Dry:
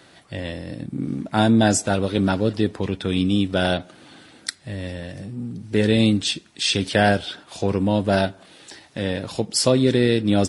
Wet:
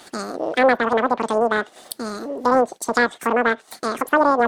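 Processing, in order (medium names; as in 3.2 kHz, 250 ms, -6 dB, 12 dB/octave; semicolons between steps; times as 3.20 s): low-pass that closes with the level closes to 850 Hz, closed at -17.5 dBFS; expander -38 dBFS; distance through air 83 m; upward compressor, threshold -29 dBFS; speed mistake 33 rpm record played at 78 rpm; loudspeaker Doppler distortion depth 0.17 ms; trim +2.5 dB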